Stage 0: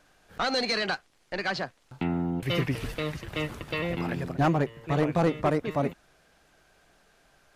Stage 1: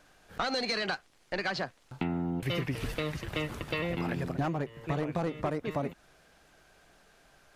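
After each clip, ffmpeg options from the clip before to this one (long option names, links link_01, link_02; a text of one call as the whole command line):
ffmpeg -i in.wav -af "acompressor=threshold=-29dB:ratio=6,volume=1dB" out.wav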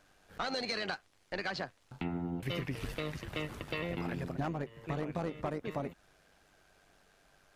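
ffmpeg -i in.wav -af "tremolo=f=97:d=0.462,volume=-2.5dB" out.wav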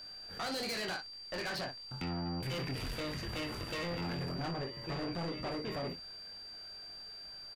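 ffmpeg -i in.wav -filter_complex "[0:a]asplit=2[link_01][link_02];[link_02]aecho=0:1:23|60:0.531|0.282[link_03];[link_01][link_03]amix=inputs=2:normalize=0,asoftclip=type=tanh:threshold=-39dB,aeval=exprs='val(0)+0.00316*sin(2*PI*4700*n/s)':channel_layout=same,volume=4dB" out.wav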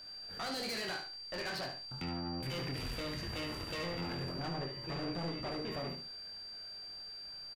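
ffmpeg -i in.wav -af "aecho=1:1:73|146|219:0.398|0.0955|0.0229,volume=-2dB" out.wav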